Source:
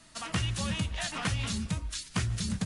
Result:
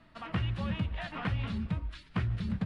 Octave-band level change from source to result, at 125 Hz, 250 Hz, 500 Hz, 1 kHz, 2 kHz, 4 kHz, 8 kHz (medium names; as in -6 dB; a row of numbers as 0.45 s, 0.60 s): 0.0 dB, -0.5 dB, -1.5 dB, -2.0 dB, -4.5 dB, -10.0 dB, under -25 dB